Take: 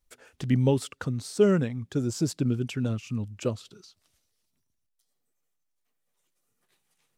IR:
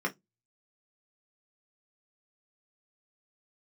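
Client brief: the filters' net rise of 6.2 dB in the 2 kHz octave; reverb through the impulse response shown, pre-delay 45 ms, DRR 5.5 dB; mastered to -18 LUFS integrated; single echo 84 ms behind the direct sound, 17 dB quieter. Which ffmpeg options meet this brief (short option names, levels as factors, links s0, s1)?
-filter_complex "[0:a]equalizer=f=2000:t=o:g=8.5,aecho=1:1:84:0.141,asplit=2[s0][s1];[1:a]atrim=start_sample=2205,adelay=45[s2];[s1][s2]afir=irnorm=-1:irlink=0,volume=0.237[s3];[s0][s3]amix=inputs=2:normalize=0,volume=2.51"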